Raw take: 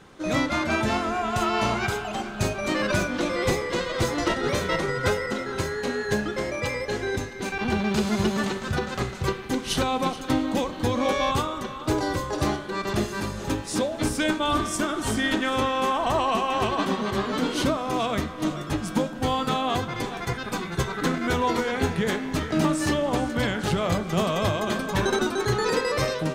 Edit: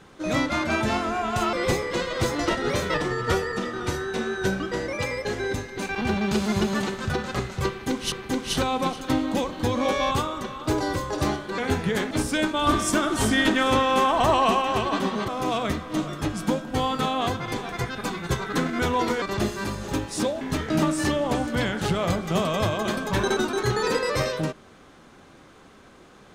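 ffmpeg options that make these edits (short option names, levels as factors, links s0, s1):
-filter_complex "[0:a]asplit=12[s0][s1][s2][s3][s4][s5][s6][s7][s8][s9][s10][s11];[s0]atrim=end=1.532[s12];[s1]atrim=start=3.318:end=4.734[s13];[s2]atrim=start=4.73:end=6.56,asetpts=PTS-STARTPTS,asetrate=40572,aresample=44100[s14];[s3]atrim=start=6.556:end=9.752[s15];[s4]atrim=start=9.318:end=12.782[s16];[s5]atrim=start=21.698:end=22.232[s17];[s6]atrim=start=13.968:end=14.532[s18];[s7]atrim=start=14.528:end=16.482,asetpts=PTS-STARTPTS,volume=1.5[s19];[s8]atrim=start=16.478:end=17.142[s20];[s9]atrim=start=17.758:end=21.702[s21];[s10]atrim=start=12.778:end=13.972[s22];[s11]atrim=start=22.228[s23];[s12][s13]acrossfade=d=0.004:c1=hsin:c2=hsin[s24];[s24][s14]acrossfade=d=0.004:c1=hsin:c2=hsin[s25];[s25][s15]acrossfade=d=0.004:c1=hsin:c2=hsin[s26];[s26][s16]acrossfade=d=0.004:c1=hsin:c2=hsin[s27];[s27][s17]acrossfade=d=0.004:c1=hsin:c2=hsin[s28];[s28][s18]acrossfade=d=0.004:c1=hsin:c2=hsin[s29];[s29][s19]acrossfade=d=0.004:c1=hsin:c2=hsin[s30];[s30][s20]acrossfade=d=0.004:c1=hsin:c2=hsin[s31];[s31][s21]acrossfade=d=0.004:c1=hsin:c2=hsin[s32];[s32][s22]acrossfade=d=0.004:c1=hsin:c2=hsin[s33];[s33][s23]acrossfade=d=0.004:c1=hsin:c2=hsin"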